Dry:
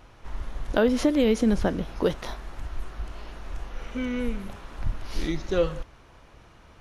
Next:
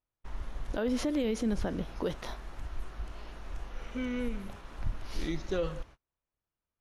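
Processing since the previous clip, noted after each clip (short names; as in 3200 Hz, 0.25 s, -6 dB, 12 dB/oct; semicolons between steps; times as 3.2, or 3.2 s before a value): gate -42 dBFS, range -36 dB; limiter -17 dBFS, peak gain reduction 9.5 dB; gain -5 dB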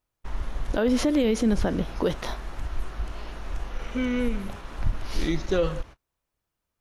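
ending taper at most 590 dB/s; gain +8 dB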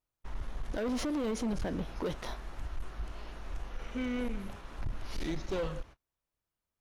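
hard clip -22 dBFS, distortion -11 dB; gain -7.5 dB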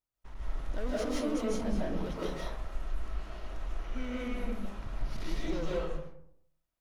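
reverb RT60 0.70 s, pre-delay 0.115 s, DRR -6 dB; gain -6 dB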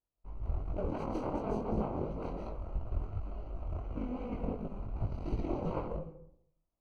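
added harmonics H 7 -7 dB, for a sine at -18.5 dBFS; chorus 2.8 Hz, delay 18 ms, depth 6.2 ms; running mean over 25 samples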